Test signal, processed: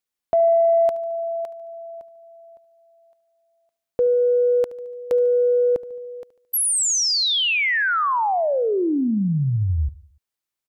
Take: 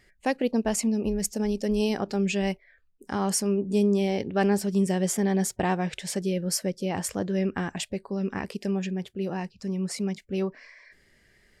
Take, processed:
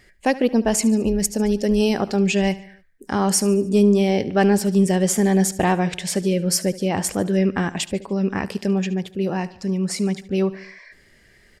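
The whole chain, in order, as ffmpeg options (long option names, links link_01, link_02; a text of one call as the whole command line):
ffmpeg -i in.wav -af "acontrast=85,aecho=1:1:73|146|219|292:0.126|0.0655|0.034|0.0177" out.wav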